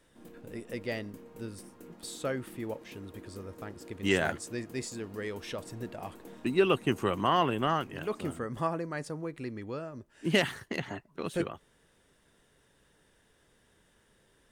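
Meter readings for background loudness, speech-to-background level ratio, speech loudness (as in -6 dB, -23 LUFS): -51.5 LUFS, 18.5 dB, -33.0 LUFS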